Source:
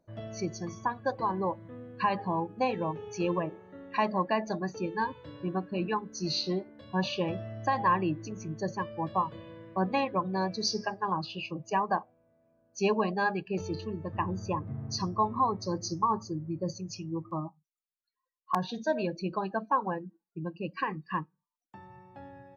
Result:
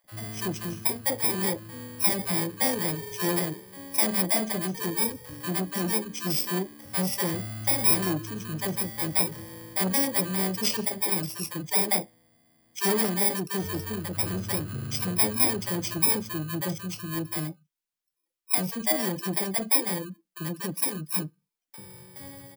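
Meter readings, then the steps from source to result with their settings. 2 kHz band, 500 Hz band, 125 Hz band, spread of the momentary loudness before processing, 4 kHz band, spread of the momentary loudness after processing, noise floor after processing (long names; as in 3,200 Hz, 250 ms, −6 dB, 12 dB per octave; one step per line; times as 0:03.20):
+3.5 dB, 0.0 dB, +3.5 dB, 10 LU, +6.5 dB, 11 LU, −81 dBFS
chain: samples in bit-reversed order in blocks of 32 samples
multiband delay without the direct sound highs, lows 40 ms, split 630 Hz
saturating transformer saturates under 1,000 Hz
level +5 dB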